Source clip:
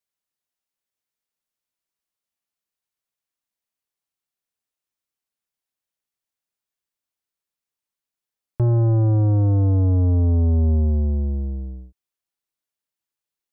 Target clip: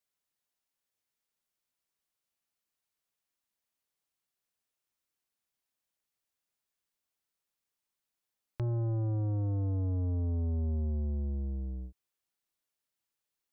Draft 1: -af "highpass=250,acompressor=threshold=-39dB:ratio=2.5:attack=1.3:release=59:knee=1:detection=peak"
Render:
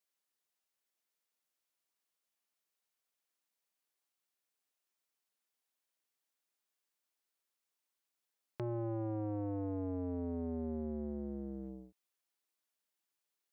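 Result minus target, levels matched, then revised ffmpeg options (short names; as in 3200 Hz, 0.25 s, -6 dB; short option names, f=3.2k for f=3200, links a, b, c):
250 Hz band +8.0 dB
-af "acompressor=threshold=-39dB:ratio=2.5:attack=1.3:release=59:knee=1:detection=peak"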